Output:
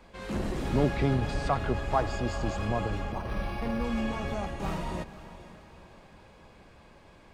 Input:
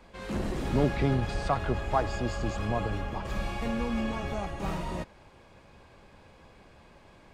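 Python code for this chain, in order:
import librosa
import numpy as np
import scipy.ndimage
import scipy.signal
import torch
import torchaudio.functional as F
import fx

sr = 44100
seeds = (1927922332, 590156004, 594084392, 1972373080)

p1 = x + fx.echo_diffused(x, sr, ms=489, feedback_pct=46, wet_db=-14.5, dry=0)
y = fx.resample_linear(p1, sr, factor=6, at=(3.12, 3.84))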